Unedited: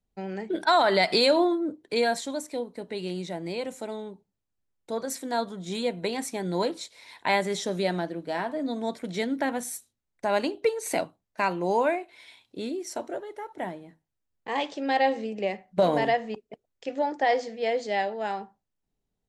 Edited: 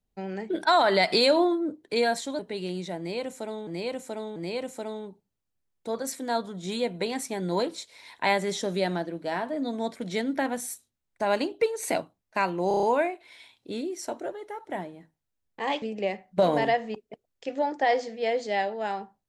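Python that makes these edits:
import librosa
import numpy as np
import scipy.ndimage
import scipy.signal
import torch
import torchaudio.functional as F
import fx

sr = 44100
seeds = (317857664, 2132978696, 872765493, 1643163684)

y = fx.edit(x, sr, fx.cut(start_s=2.39, length_s=0.41),
    fx.repeat(start_s=3.39, length_s=0.69, count=3),
    fx.stutter(start_s=11.71, slice_s=0.03, count=6),
    fx.cut(start_s=14.7, length_s=0.52), tone=tone)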